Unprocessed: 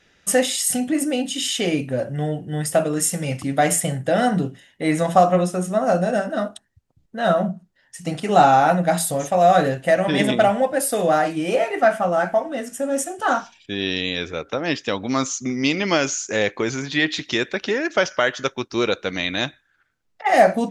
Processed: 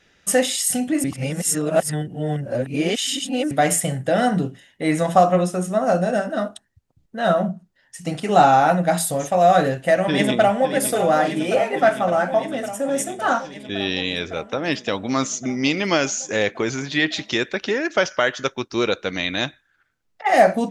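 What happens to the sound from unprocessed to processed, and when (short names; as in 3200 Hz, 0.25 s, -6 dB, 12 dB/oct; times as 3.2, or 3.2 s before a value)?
1.04–3.51 reverse
10.04–10.7 echo throw 0.56 s, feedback 80%, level -9 dB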